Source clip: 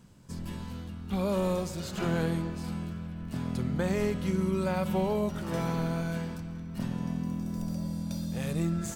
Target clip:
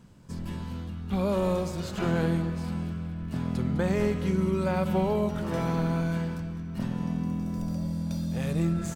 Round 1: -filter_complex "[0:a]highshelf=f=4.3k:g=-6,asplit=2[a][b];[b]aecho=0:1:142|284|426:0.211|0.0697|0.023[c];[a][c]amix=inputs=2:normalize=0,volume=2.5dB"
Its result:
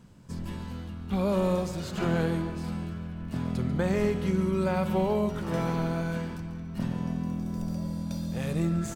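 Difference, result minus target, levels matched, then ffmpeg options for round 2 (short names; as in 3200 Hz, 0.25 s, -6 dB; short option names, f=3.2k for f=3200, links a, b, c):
echo 63 ms early
-filter_complex "[0:a]highshelf=f=4.3k:g=-6,asplit=2[a][b];[b]aecho=0:1:205|410|615:0.211|0.0697|0.023[c];[a][c]amix=inputs=2:normalize=0,volume=2.5dB"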